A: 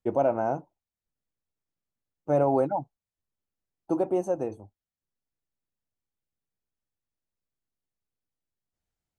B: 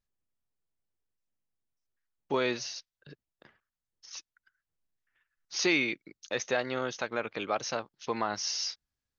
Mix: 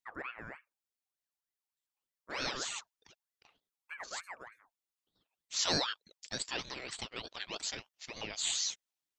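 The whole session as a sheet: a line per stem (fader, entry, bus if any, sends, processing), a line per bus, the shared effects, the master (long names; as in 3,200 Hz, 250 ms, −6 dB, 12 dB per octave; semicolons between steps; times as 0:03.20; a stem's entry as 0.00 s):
−17.0 dB, 0.00 s, no send, high-shelf EQ 4,900 Hz +10 dB
+3.0 dB, 0.00 s, no send, Bessel high-pass filter 2,200 Hz, order 2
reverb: not used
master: ring modulator whose carrier an LFO sweeps 1,400 Hz, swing 45%, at 3.3 Hz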